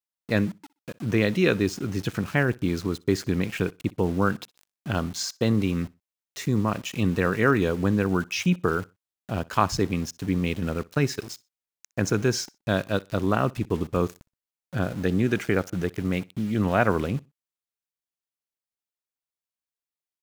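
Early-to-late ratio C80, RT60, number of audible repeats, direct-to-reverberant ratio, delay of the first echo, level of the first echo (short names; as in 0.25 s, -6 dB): none, none, 1, none, 62 ms, -24.0 dB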